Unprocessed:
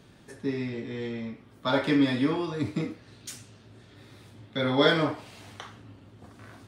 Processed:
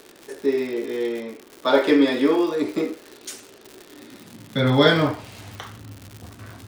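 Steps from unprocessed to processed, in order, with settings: high-pass sweep 380 Hz -> 73 Hz, 3.79–5.09; crackle 170/s -35 dBFS; gain +5 dB

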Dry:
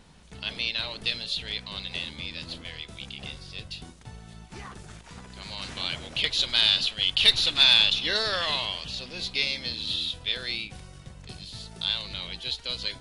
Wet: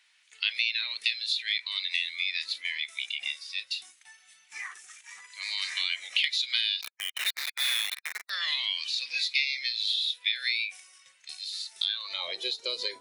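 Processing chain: 6.81–8.3 Schmitt trigger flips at -19 dBFS; compressor 10:1, threshold -32 dBFS, peak gain reduction 15.5 dB; spectral noise reduction 12 dB; high-pass sweep 2100 Hz -> 370 Hz, 11.82–12.47; gain +5 dB

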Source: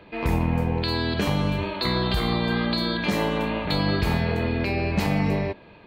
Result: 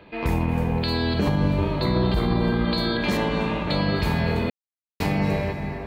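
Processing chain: 1.19–2.65 tilt shelf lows +5.5 dB, about 1100 Hz; reverb RT60 5.2 s, pre-delay 0.216 s, DRR 7.5 dB; limiter -12.5 dBFS, peak gain reduction 5.5 dB; 3.17–3.96 air absorption 50 m; 4.5–5 mute

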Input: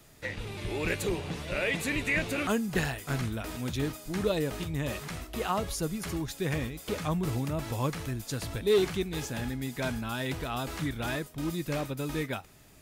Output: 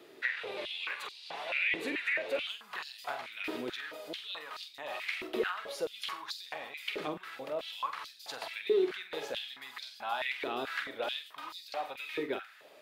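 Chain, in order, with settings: resonant high shelf 5100 Hz -9.5 dB, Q 1.5; compressor 10:1, threshold -34 dBFS, peak gain reduction 14 dB; flutter echo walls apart 7.9 m, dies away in 0.29 s; stepped high-pass 4.6 Hz 370–4600 Hz

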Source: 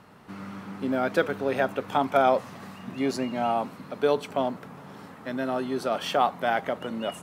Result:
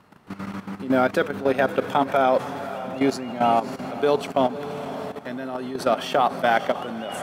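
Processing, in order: diffused feedback echo 0.545 s, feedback 55%, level -12 dB; level quantiser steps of 13 dB; gain +8 dB

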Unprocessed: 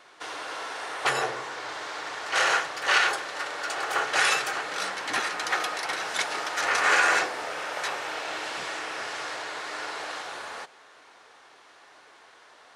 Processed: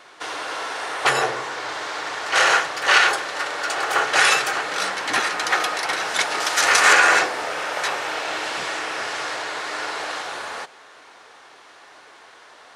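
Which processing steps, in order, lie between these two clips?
6.4–6.93 high shelf 3800 Hz +9.5 dB; gain +6.5 dB

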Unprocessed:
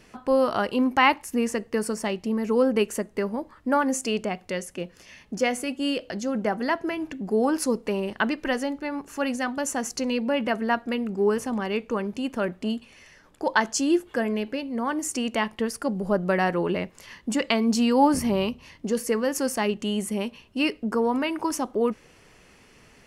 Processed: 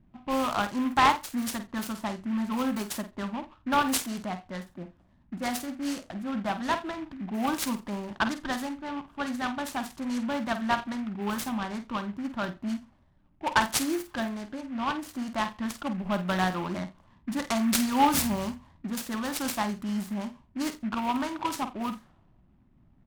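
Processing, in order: low-pass opened by the level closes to 350 Hz, open at -19 dBFS; tone controls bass -1 dB, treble +10 dB; fixed phaser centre 1100 Hz, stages 4; doubler 49 ms -10 dB; echo 86 ms -22 dB; noise-modulated delay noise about 1600 Hz, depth 0.051 ms

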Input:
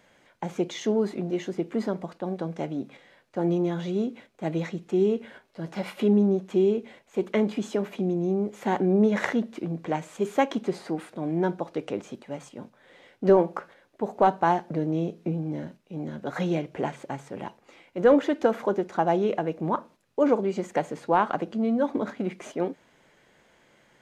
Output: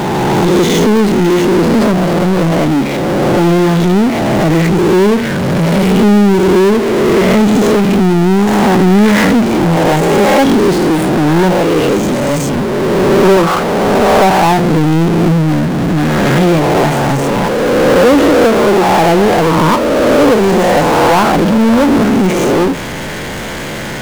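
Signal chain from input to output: spectral swells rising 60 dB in 1.41 s; low shelf 250 Hz +9.5 dB; power-law curve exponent 0.35

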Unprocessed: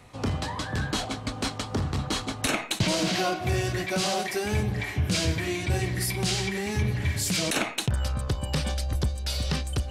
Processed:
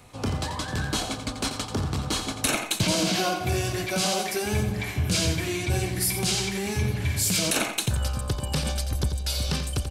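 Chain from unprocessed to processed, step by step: high shelf 7900 Hz +9 dB; notch 1900 Hz, Q 13; on a send: feedback echo 87 ms, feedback 23%, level -9 dB

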